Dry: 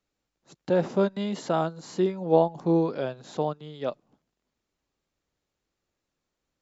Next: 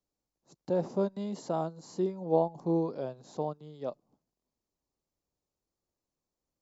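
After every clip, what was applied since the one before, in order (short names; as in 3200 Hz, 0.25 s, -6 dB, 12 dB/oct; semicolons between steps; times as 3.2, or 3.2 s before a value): band shelf 2200 Hz -9.5 dB; gain -6 dB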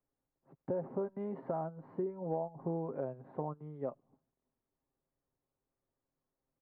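steep low-pass 2000 Hz 36 dB/oct; comb 7.5 ms, depth 44%; compressor 6:1, threshold -33 dBFS, peak gain reduction 12 dB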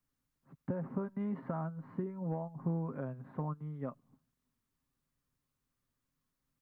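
band shelf 530 Hz -11.5 dB; gain +6 dB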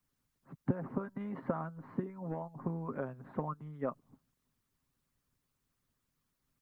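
harmonic-percussive split harmonic -12 dB; gain +7.5 dB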